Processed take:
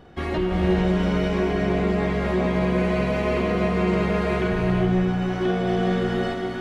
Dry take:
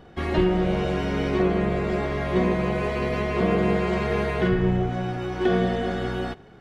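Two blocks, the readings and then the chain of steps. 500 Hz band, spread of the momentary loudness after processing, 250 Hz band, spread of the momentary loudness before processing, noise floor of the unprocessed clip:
+1.0 dB, 3 LU, +2.5 dB, 5 LU, −48 dBFS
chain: brickwall limiter −16.5 dBFS, peak gain reduction 6 dB
on a send: echo with a time of its own for lows and highs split 550 Hz, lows 104 ms, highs 640 ms, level −14 dB
on the sum: reverb whose tail is shaped and stops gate 470 ms rising, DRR 1 dB

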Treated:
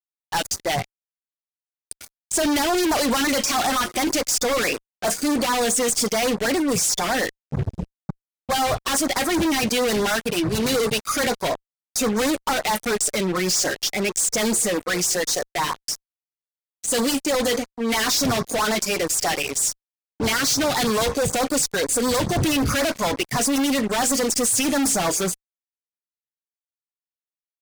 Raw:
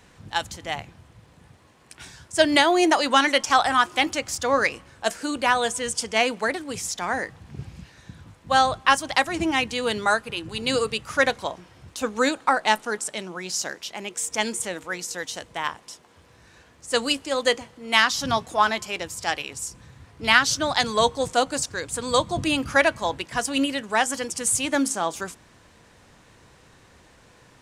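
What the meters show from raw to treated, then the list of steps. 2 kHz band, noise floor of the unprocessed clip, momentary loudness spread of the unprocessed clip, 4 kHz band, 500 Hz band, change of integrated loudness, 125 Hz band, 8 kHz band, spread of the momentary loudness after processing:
−2.5 dB, −55 dBFS, 13 LU, +1.0 dB, +2.5 dB, +2.0 dB, +8.0 dB, +7.5 dB, 8 LU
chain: noise reduction from a noise print of the clip's start 20 dB
fuzz pedal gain 42 dB, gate −45 dBFS
auto-filter notch sine 9.3 Hz 920–3,100 Hz
level −5.5 dB

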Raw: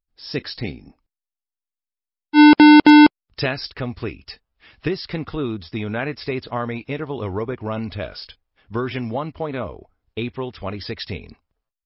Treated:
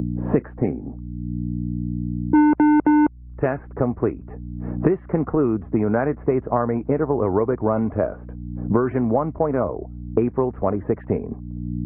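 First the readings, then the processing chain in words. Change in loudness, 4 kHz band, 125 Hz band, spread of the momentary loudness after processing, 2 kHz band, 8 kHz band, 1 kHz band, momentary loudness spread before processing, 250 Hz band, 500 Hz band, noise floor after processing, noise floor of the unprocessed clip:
−4.0 dB, below −40 dB, +5.0 dB, 14 LU, −11.0 dB, can't be measured, −3.5 dB, 21 LU, −3.5 dB, +5.5 dB, −40 dBFS, below −85 dBFS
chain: low-pass that shuts in the quiet parts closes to 430 Hz, open at −13.5 dBFS
low-shelf EQ 190 Hz −9.5 dB
mains hum 60 Hz, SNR 29 dB
Gaussian smoothing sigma 6.2 samples
multiband upward and downward compressor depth 100%
level +8.5 dB

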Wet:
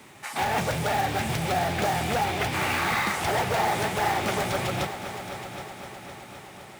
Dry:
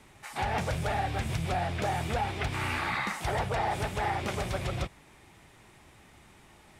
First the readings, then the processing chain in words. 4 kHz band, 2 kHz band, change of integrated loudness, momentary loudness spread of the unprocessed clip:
+7.5 dB, +6.5 dB, +5.0 dB, 3 LU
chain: high-pass filter 140 Hz 12 dB per octave
in parallel at −9.5 dB: wrap-around overflow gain 29.5 dB
on the sum: log-companded quantiser 6 bits
echo machine with several playback heads 257 ms, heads all three, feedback 62%, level −15.5 dB
level +5 dB

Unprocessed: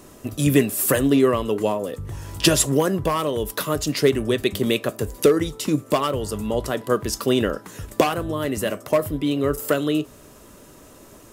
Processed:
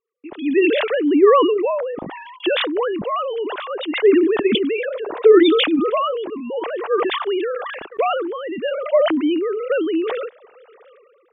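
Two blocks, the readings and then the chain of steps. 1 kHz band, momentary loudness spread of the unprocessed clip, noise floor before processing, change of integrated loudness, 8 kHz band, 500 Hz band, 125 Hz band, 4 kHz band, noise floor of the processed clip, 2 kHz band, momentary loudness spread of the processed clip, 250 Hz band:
+4.0 dB, 8 LU, −47 dBFS, +3.0 dB, below −40 dB, +5.0 dB, below −15 dB, +2.5 dB, −52 dBFS, +3.5 dB, 14 LU, +2.0 dB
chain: three sine waves on the formant tracks
noise gate −50 dBFS, range −31 dB
level that may fall only so fast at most 32 dB per second

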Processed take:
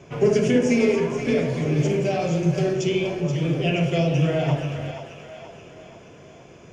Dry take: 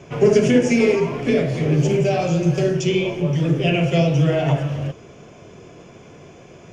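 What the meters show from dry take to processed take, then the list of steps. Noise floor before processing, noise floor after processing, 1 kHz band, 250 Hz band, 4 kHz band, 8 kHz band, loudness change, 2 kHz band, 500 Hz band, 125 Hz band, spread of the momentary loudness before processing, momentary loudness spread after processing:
−44 dBFS, −46 dBFS, −3.5 dB, −3.0 dB, −3.5 dB, can't be measured, −3.5 dB, −3.5 dB, −3.5 dB, −4.0 dB, 5 LU, 14 LU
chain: echo with a time of its own for lows and highs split 580 Hz, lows 137 ms, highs 478 ms, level −9 dB
level −4 dB

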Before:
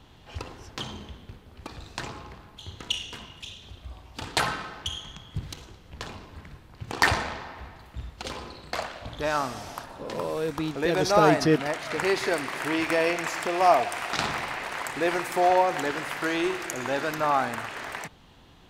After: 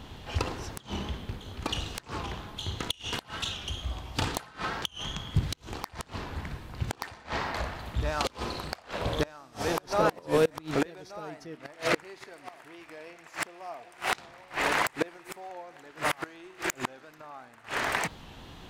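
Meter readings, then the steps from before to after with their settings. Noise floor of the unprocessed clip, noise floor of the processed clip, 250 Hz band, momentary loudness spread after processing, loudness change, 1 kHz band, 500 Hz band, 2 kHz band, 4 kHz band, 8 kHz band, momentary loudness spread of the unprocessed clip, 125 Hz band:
−53 dBFS, −55 dBFS, −6.0 dB, 17 LU, −6.0 dB, −7.0 dB, −6.0 dB, −4.5 dB, −2.0 dB, −2.5 dB, 21 LU, +0.5 dB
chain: backwards echo 1,180 ms −13 dB
gate with flip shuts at −19 dBFS, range −29 dB
wave folding −21 dBFS
wow of a warped record 45 rpm, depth 100 cents
level +7 dB

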